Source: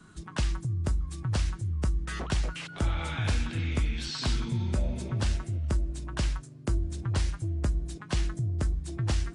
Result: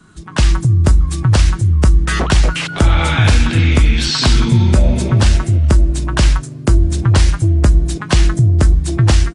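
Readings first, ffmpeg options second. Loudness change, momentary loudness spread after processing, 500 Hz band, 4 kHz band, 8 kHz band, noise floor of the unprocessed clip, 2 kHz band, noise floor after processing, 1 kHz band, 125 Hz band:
+18.0 dB, 4 LU, +17.5 dB, +17.5 dB, +17.5 dB, -47 dBFS, +18.0 dB, -30 dBFS, +18.0 dB, +18.0 dB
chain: -af "dynaudnorm=f=250:g=3:m=4.22,aresample=32000,aresample=44100,alimiter=level_in=2.37:limit=0.891:release=50:level=0:latency=1,volume=0.891"

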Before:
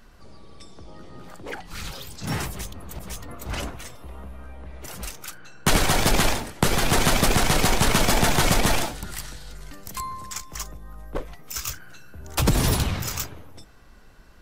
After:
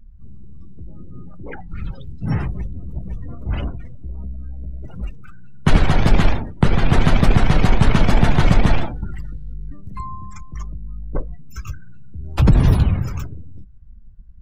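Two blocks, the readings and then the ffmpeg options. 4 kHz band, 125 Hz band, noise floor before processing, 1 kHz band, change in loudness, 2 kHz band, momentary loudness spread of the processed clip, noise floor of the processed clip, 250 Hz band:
-6.0 dB, +9.5 dB, -49 dBFS, 0.0 dB, +4.5 dB, -1.0 dB, 19 LU, -39 dBFS, +6.0 dB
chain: -af "bass=f=250:g=10,treble=f=4000:g=-9,afftdn=nr=27:nf=-35"

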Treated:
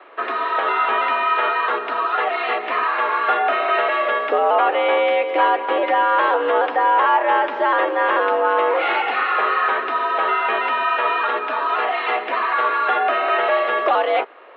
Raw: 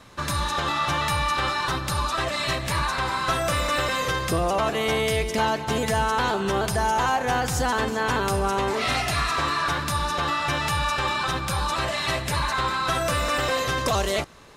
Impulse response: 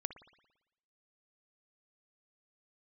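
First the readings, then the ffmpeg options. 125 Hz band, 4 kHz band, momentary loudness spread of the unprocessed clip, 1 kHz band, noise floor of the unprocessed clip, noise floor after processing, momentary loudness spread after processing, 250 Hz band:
under -35 dB, -3.5 dB, 2 LU, +7.5 dB, -31 dBFS, -28 dBFS, 4 LU, -3.0 dB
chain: -af "highshelf=f=2300:g=-9,highpass=f=290:t=q:w=0.5412,highpass=f=290:t=q:w=1.307,lowpass=f=3000:t=q:w=0.5176,lowpass=f=3000:t=q:w=0.7071,lowpass=f=3000:t=q:w=1.932,afreqshift=94,volume=2.66"

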